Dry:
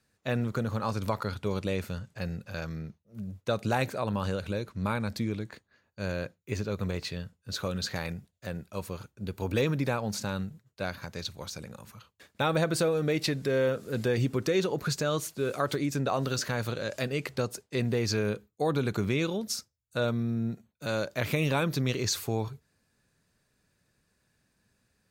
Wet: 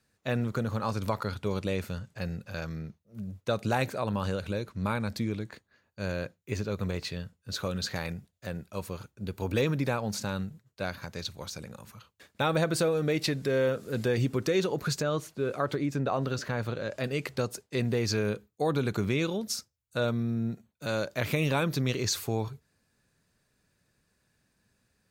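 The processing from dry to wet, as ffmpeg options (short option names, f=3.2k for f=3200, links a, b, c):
-filter_complex "[0:a]asettb=1/sr,asplit=3[a][b][c];[a]atrim=end=15.024[d];[b]atrim=start=15.02:end=17.04,asetpts=PTS-STARTPTS,afade=t=in:d=0.004:c=qsin,afade=t=out:st=2.016:d=0.004:c=qsin,highshelf=f=3.8k:g=-11.5[e];[c]atrim=start=17.036[f];[d][e]acrossfade=d=0.004:c1=hsin:c2=qsin[g];[g][f]acrossfade=d=0.004:c1=qsin:c2=hsin"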